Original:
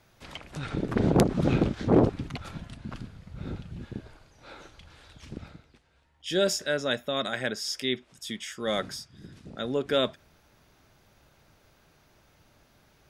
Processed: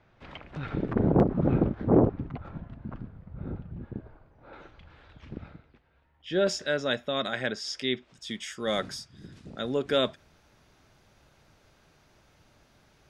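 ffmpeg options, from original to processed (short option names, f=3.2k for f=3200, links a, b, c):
-af "asetnsamples=n=441:p=0,asendcmd='0.93 lowpass f 1200;4.53 lowpass f 2400;6.47 lowpass f 5500;8.31 lowpass f 10000',lowpass=2.5k"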